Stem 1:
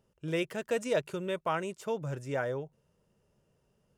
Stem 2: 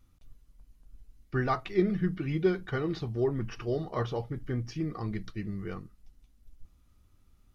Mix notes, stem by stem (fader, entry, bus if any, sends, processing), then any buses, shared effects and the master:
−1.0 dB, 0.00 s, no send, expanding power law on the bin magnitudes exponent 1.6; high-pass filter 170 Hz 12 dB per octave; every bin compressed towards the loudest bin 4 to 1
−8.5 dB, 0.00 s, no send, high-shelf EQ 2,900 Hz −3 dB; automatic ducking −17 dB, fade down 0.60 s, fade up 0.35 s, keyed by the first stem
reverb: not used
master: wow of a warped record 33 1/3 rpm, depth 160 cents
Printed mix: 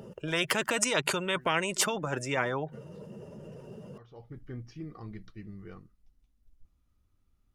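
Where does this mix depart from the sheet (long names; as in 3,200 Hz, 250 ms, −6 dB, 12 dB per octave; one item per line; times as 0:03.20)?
stem 1 −1.0 dB → +10.5 dB
master: missing wow of a warped record 33 1/3 rpm, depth 160 cents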